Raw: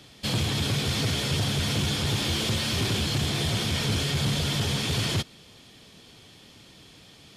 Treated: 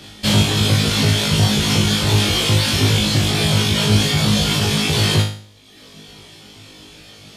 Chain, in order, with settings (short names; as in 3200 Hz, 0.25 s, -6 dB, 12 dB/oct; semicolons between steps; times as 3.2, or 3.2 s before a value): reverb removal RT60 1.2 s; flutter echo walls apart 3.3 m, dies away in 0.47 s; gain +9 dB